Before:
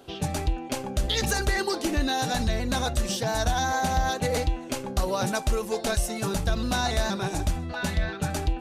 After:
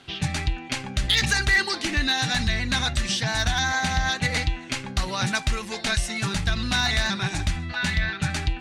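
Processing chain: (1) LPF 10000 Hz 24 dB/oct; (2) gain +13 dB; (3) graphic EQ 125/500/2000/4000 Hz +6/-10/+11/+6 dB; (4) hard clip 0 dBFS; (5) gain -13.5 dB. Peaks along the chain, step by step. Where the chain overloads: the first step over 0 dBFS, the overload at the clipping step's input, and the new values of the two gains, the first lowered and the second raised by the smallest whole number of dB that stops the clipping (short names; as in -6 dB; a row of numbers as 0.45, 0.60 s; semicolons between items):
-14.5, -1.5, +6.0, 0.0, -13.5 dBFS; step 3, 6.0 dB; step 2 +7 dB, step 5 -7.5 dB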